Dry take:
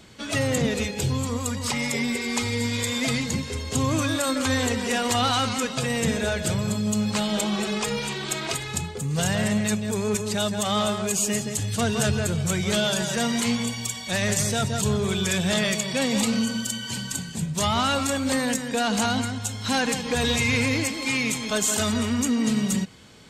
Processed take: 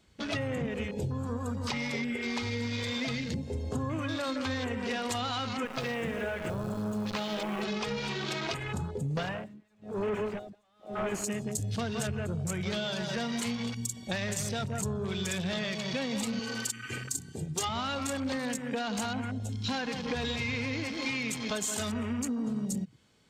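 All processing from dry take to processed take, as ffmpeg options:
ffmpeg -i in.wav -filter_complex "[0:a]asettb=1/sr,asplit=3[link_01][link_02][link_03];[link_01]atrim=end=5.654[link_04];[link_02]atrim=start=5.65:end=7.63,asetpts=PTS-STARTPTS,afade=type=in:duration=0.004:curve=qsin,afade=type=out:start_time=1.976:duration=0.004:curve=qsin,bass=frequency=250:gain=-7,treble=frequency=4000:gain=-5,acrusher=bits=6:dc=4:mix=0:aa=0.000001[link_05];[link_03]atrim=start=7.626[link_06];[link_04][link_05]acrossfade=duration=0.004:curve1=hsin:curve2=qsin[link_07];[link_07][link_06]acrossfade=duration=0.004:curve1=qsin:curve2=hsin,asettb=1/sr,asplit=3[link_08][link_09][link_10];[link_08]atrim=end=9.174[link_11];[link_09]atrim=start=9.17:end=11.24,asetpts=PTS-STARTPTS,afade=type=in:duration=0.004:curve=qsin,afade=type=out:start_time=2.066:duration=0.004:curve=qsin,asplit=2[link_12][link_13];[link_13]highpass=frequency=720:poles=1,volume=32dB,asoftclip=type=tanh:threshold=-11.5dB[link_14];[link_12][link_14]amix=inputs=2:normalize=0,lowpass=frequency=1300:poles=1,volume=-6dB,aeval=exprs='val(0)*pow(10,-33*(0.5-0.5*cos(2*PI*1*n/s))/20)':channel_layout=same[link_15];[link_10]atrim=start=11.236[link_16];[link_11][link_15]acrossfade=duration=0.004:curve1=hsin:curve2=qsin[link_17];[link_17][link_16]acrossfade=duration=0.004:curve1=qsin:curve2=hsin,asettb=1/sr,asplit=3[link_18][link_19][link_20];[link_18]atrim=end=16.394[link_21];[link_19]atrim=start=16.39:end=17.69,asetpts=PTS-STARTPTS,afade=type=in:duration=0.004:curve=qsin,afade=type=out:start_time=1.296:duration=0.004:curve=qsin,highpass=frequency=160:poles=1,aecho=1:1:2.5:0.84,atrim=end_sample=57330[link_22];[link_20]atrim=start=17.686[link_23];[link_21][link_22]acrossfade=duration=0.004:curve1=hsin:curve2=qsin[link_24];[link_24][link_23]acrossfade=duration=0.004:curve1=qsin:curve2=hsin,afwtdn=0.02,acompressor=threshold=-30dB:ratio=6" out.wav

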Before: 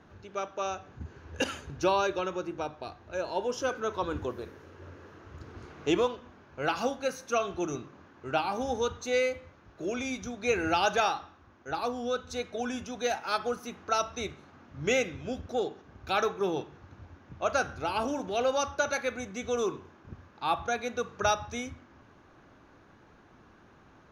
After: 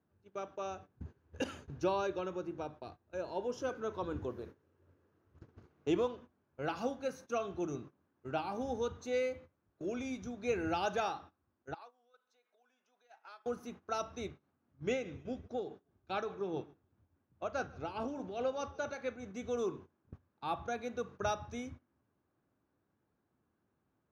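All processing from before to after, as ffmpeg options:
ffmpeg -i in.wav -filter_complex "[0:a]asettb=1/sr,asplit=3[link_01][link_02][link_03];[link_01]atrim=end=11.744[link_04];[link_02]atrim=start=11.74:end=13.46,asetpts=PTS-STARTPTS,afade=type=in:duration=0.004:curve=qsin,afade=type=out:start_time=1.716:duration=0.004:curve=qsin,acompressor=threshold=-36dB:ratio=16:attack=3.2:release=140:knee=1:detection=peak,highpass=860,aemphasis=mode=reproduction:type=50kf[link_05];[link_03]atrim=start=13.456[link_06];[link_04][link_05]acrossfade=duration=0.004:curve1=hsin:curve2=qsin[link_07];[link_07][link_06]acrossfade=duration=0.004:curve1=qsin:curve2=hsin,asettb=1/sr,asplit=3[link_08][link_09][link_10];[link_08]atrim=end=14.284[link_11];[link_09]atrim=start=14.28:end=19.34,asetpts=PTS-STARTPTS,afade=type=in:duration=0.004:curve=qsin,afade=type=out:start_time=5.056:duration=0.004:curve=qsin,lowpass=6400,tremolo=f=4.8:d=0.46,asplit=4[link_12][link_13][link_14][link_15];[link_13]adelay=154,afreqshift=-39,volume=-23dB[link_16];[link_14]adelay=308,afreqshift=-78,volume=-29.4dB[link_17];[link_15]adelay=462,afreqshift=-117,volume=-35.8dB[link_18];[link_12][link_16][link_17][link_18]amix=inputs=4:normalize=0,atrim=end_sample=223146[link_19];[link_10]atrim=start=19.336[link_20];[link_11][link_19]acrossfade=duration=0.004:curve1=hsin:curve2=qsin[link_21];[link_21][link_20]acrossfade=duration=0.004:curve1=qsin:curve2=hsin,highpass=71,agate=range=-17dB:threshold=-44dB:ratio=16:detection=peak,tiltshelf=frequency=700:gain=4.5,volume=-7.5dB" out.wav

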